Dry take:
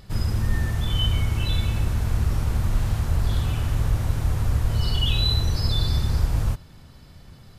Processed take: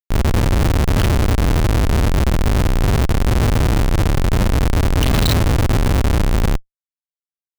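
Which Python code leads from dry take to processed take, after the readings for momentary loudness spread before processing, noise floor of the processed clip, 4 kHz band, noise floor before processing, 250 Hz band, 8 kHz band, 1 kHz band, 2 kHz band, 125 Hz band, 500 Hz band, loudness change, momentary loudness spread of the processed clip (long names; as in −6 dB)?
3 LU, below −85 dBFS, +0.5 dB, −47 dBFS, +13.0 dB, +10.5 dB, +13.0 dB, +11.0 dB, +6.0 dB, +15.5 dB, +7.0 dB, 2 LU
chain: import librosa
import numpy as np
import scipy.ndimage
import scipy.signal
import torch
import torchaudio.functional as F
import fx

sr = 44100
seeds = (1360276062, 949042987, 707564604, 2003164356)

y = x + 10.0 ** (-16.0 / 20.0) * np.pad(x, (int(756 * sr / 1000.0), 0))[:len(x)]
y = fx.schmitt(y, sr, flips_db=-23.5)
y = y * 10.0 ** (8.0 / 20.0)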